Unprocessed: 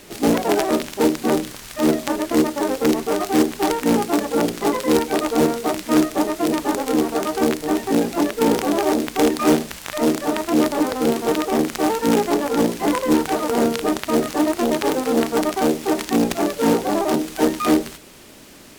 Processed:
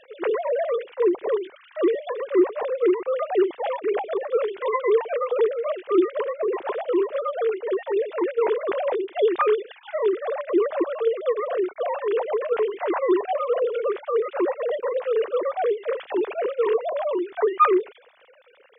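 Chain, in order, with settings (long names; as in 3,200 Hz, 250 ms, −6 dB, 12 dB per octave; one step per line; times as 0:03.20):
three sine waves on the formant tracks
level −4 dB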